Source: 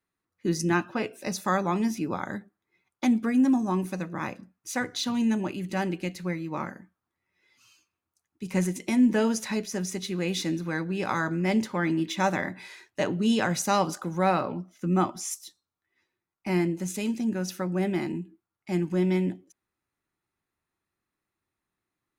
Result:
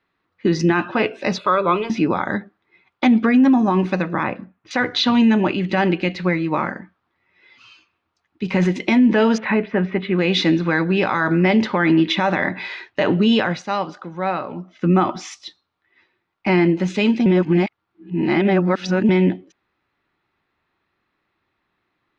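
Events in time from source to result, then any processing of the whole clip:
1.38–1.9 fixed phaser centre 1200 Hz, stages 8
4.23–4.71 air absorption 320 m
9.38–10.19 LPF 2500 Hz 24 dB/oct
13.22–14.91 dip -13 dB, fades 0.43 s
17.26–19.09 reverse
whole clip: LPF 3900 Hz 24 dB/oct; low shelf 290 Hz -6.5 dB; maximiser +22.5 dB; gain -7 dB

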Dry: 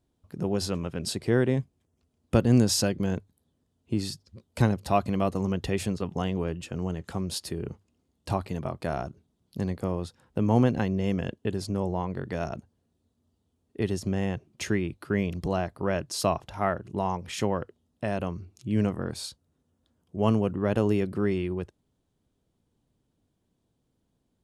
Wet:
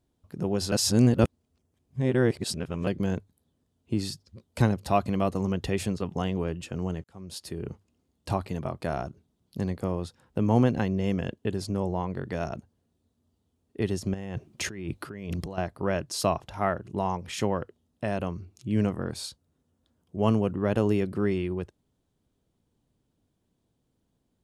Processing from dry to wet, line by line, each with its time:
0.72–2.87 reverse
7.04–7.71 fade in
14.14–15.58 negative-ratio compressor -35 dBFS

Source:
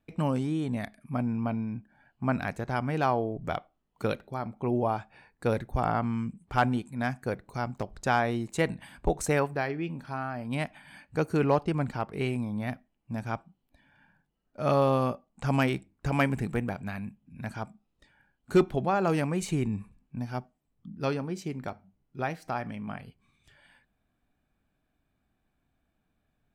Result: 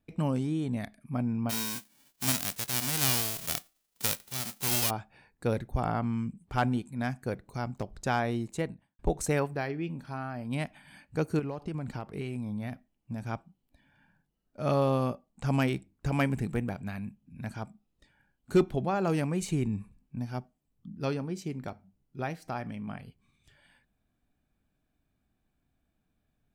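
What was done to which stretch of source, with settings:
1.49–4.89 spectral whitening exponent 0.1
8.4–8.99 studio fade out
11.39–13.22 compressor 10:1, threshold -29 dBFS
whole clip: bell 1200 Hz -4.5 dB 2.8 oct

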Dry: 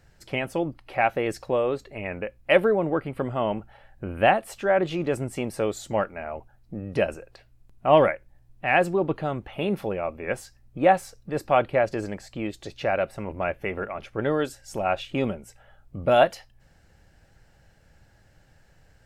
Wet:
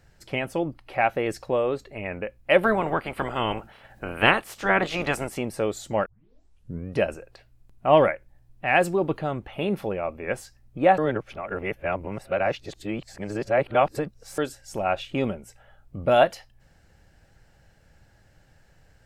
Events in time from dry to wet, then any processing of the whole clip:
2.63–5.36 spectral limiter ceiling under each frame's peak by 20 dB
6.06 tape start 0.86 s
8.75–9.19 high shelf 4600 Hz +8 dB
10.98–14.38 reverse

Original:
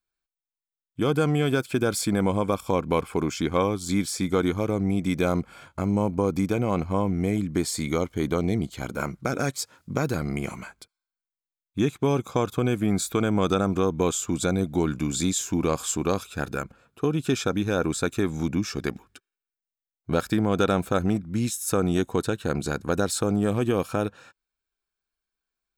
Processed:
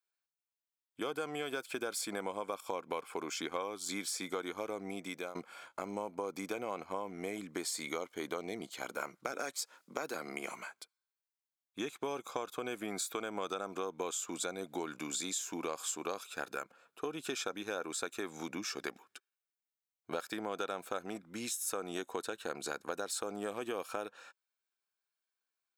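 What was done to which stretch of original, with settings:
4.74–5.35 fade out equal-power, to -19.5 dB
9.32–10.5 HPF 160 Hz 24 dB/oct
whole clip: HPF 500 Hz 12 dB/oct; compressor 4:1, threshold -31 dBFS; gain -3.5 dB

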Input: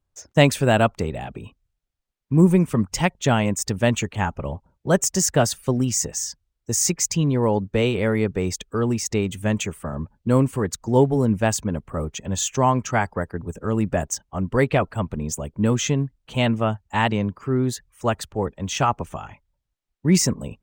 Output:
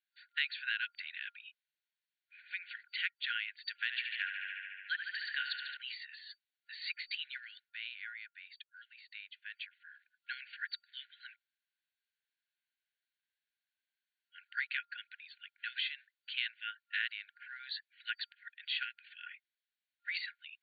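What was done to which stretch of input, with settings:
3.75–5.77 narrowing echo 72 ms, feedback 82%, band-pass 2100 Hz, level -7.5 dB
7.59–10 dip -13 dB, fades 0.19 s
11.36–14.29 room tone
whole clip: FFT band-pass 1400–4600 Hz; compressor 2.5:1, threshold -36 dBFS

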